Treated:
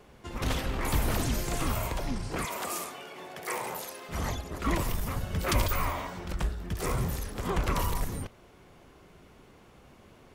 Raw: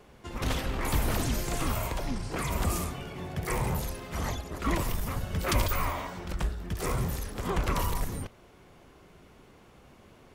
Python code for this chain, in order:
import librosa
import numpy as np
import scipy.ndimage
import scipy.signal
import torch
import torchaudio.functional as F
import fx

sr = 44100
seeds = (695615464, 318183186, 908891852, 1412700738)

y = fx.highpass(x, sr, hz=430.0, slope=12, at=(2.45, 4.09))